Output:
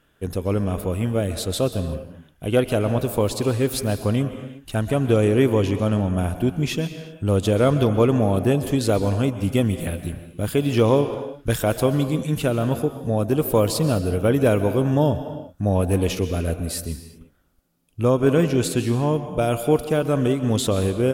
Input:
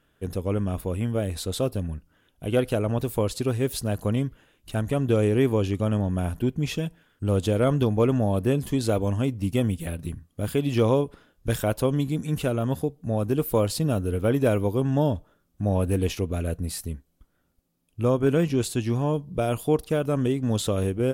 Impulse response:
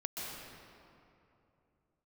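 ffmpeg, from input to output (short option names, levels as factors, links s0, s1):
-filter_complex "[0:a]asplit=2[s0][s1];[1:a]atrim=start_sample=2205,afade=t=out:st=0.43:d=0.01,atrim=end_sample=19404,lowshelf=f=240:g=-9.5[s2];[s1][s2]afir=irnorm=-1:irlink=0,volume=0.501[s3];[s0][s3]amix=inputs=2:normalize=0,volume=1.26"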